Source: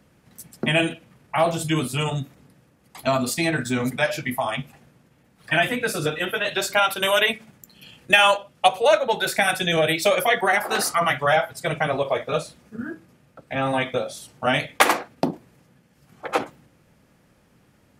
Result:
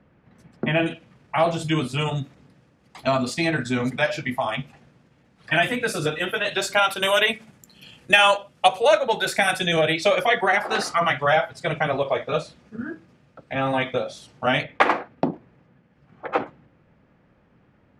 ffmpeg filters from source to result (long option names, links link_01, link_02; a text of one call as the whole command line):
ffmpeg -i in.wav -af "asetnsamples=nb_out_samples=441:pad=0,asendcmd='0.86 lowpass f 5800;5.56 lowpass f 9900;9.81 lowpass f 5400;14.63 lowpass f 2300',lowpass=2200" out.wav